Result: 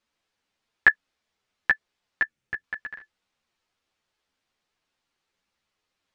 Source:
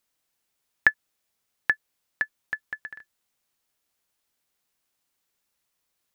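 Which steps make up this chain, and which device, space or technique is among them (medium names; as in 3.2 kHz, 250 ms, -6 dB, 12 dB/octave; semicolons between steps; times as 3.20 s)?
string-machine ensemble chorus (three-phase chorus; low-pass 4.4 kHz 12 dB/octave); 2.23–2.64 s: ten-band graphic EQ 125 Hz +11 dB, 1 kHz -8 dB, 4 kHz -6 dB; trim +6.5 dB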